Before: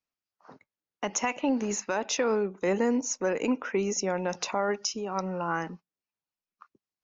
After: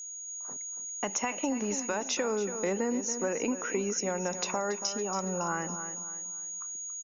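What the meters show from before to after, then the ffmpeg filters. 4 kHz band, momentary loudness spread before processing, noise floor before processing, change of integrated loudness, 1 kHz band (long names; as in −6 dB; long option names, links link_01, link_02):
−1.5 dB, 6 LU, below −85 dBFS, −3.0 dB, −3.0 dB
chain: -af "aeval=exprs='val(0)+0.0112*sin(2*PI*6700*n/s)':channel_layout=same,aecho=1:1:280|560|840|1120:0.237|0.0854|0.0307|0.0111,acompressor=threshold=-27dB:ratio=4"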